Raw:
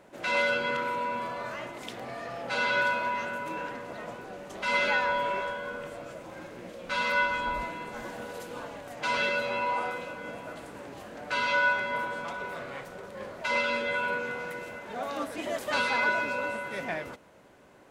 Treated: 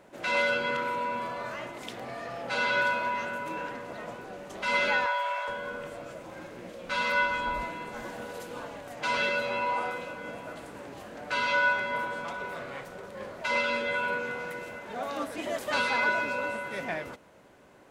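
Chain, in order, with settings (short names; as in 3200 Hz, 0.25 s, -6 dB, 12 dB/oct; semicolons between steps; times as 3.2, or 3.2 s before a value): 5.06–5.48 steep high-pass 590 Hz 48 dB/oct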